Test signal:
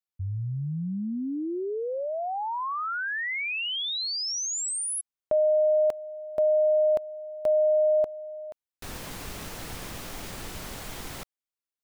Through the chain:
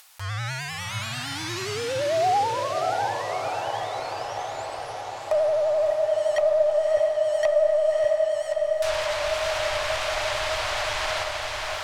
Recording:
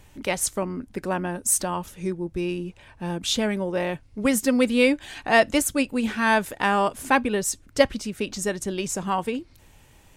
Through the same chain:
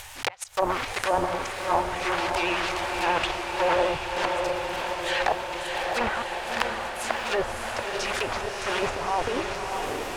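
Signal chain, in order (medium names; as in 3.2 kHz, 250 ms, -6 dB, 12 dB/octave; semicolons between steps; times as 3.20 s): block-companded coder 3-bit; inverted gate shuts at -13 dBFS, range -41 dB; FFT filter 110 Hz 0 dB, 190 Hz -21 dB, 790 Hz +13 dB; low-pass that closes with the level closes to 420 Hz, closed at -15 dBFS; transient shaper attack -4 dB, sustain +11 dB; upward compressor 4:1, threshold -40 dBFS; wow and flutter 9.9 Hz 69 cents; on a send: echo that smears into a reverb 623 ms, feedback 75%, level -4 dB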